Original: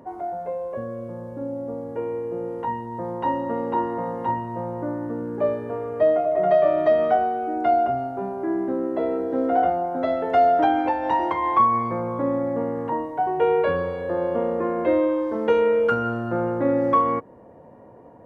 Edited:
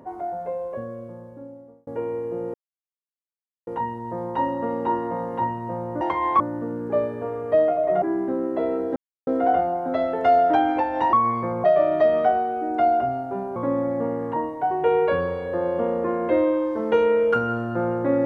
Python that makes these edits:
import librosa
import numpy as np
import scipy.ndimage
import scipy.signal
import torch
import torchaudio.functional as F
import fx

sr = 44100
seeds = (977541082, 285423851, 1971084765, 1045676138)

y = fx.edit(x, sr, fx.fade_out_span(start_s=0.61, length_s=1.26),
    fx.insert_silence(at_s=2.54, length_s=1.13),
    fx.move(start_s=6.5, length_s=1.92, to_s=12.12),
    fx.insert_silence(at_s=9.36, length_s=0.31),
    fx.move(start_s=11.22, length_s=0.39, to_s=4.88), tone=tone)